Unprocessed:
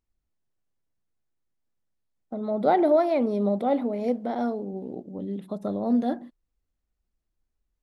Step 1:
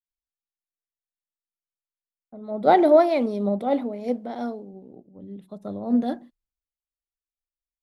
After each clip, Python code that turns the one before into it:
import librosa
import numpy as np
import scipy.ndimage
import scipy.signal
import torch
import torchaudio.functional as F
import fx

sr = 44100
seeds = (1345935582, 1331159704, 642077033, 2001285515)

y = fx.band_widen(x, sr, depth_pct=100)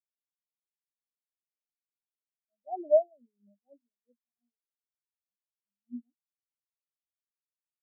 y = fx.spectral_expand(x, sr, expansion=4.0)
y = y * librosa.db_to_amplitude(-8.0)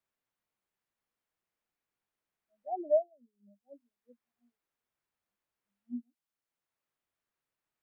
y = fx.band_squash(x, sr, depth_pct=40)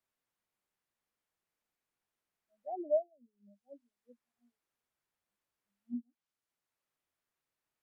y = fx.env_lowpass_down(x, sr, base_hz=580.0, full_db=-36.5)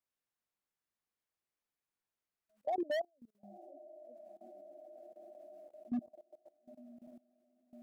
y = fx.echo_diffused(x, sr, ms=976, feedback_pct=56, wet_db=-15.0)
y = np.clip(10.0 ** (34.5 / 20.0) * y, -1.0, 1.0) / 10.0 ** (34.5 / 20.0)
y = fx.level_steps(y, sr, step_db=21)
y = y * librosa.db_to_amplitude(9.0)